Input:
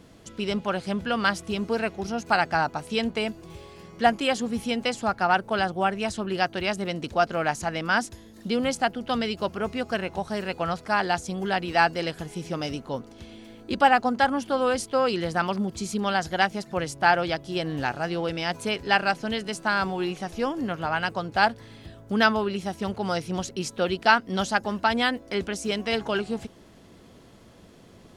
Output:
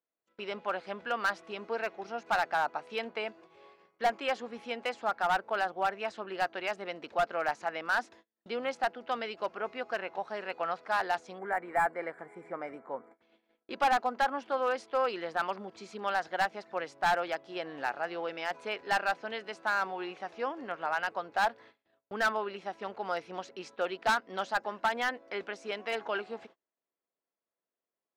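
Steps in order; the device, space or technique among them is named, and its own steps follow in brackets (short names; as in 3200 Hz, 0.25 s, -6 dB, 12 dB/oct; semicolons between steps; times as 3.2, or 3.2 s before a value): walkie-talkie (BPF 520–2700 Hz; hard clip -18 dBFS, distortion -11 dB; gate -49 dBFS, range -34 dB); bell 3100 Hz -3.5 dB 0.24 oct; spectral gain 11.38–13.22, 2400–7000 Hz -20 dB; gain -3.5 dB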